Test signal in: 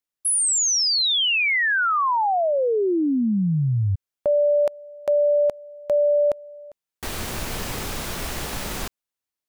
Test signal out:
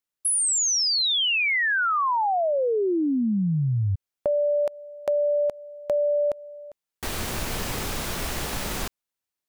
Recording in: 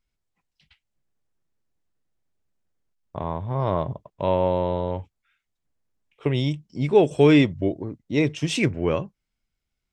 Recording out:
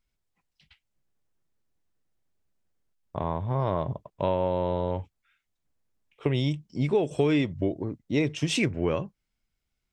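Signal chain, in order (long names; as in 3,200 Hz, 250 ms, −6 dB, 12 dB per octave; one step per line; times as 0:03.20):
downward compressor 5 to 1, threshold −21 dBFS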